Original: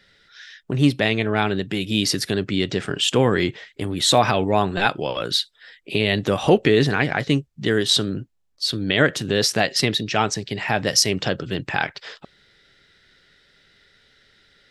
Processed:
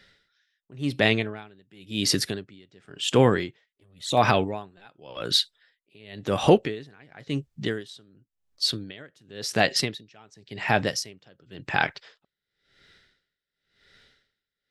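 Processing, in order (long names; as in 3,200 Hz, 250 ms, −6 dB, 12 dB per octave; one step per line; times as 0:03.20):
0:03.66–0:04.17: flanger swept by the level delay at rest 4.9 ms, full sweep at −14 dBFS
tremolo with a sine in dB 0.93 Hz, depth 32 dB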